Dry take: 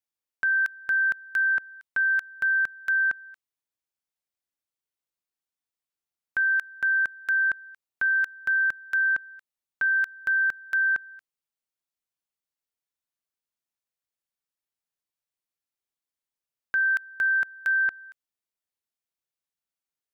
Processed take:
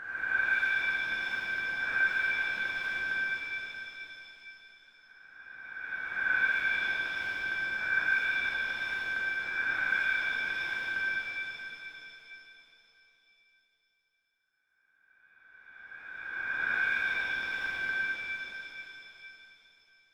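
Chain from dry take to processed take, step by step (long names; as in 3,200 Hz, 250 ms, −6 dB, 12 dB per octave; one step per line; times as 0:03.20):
peak hold with a rise ahead of every peak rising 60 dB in 2.57 s
low-pass filter 2,000 Hz 6 dB per octave
hum removal 82.14 Hz, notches 32
reverb with rising layers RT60 3.4 s, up +7 semitones, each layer −8 dB, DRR −7.5 dB
level −7.5 dB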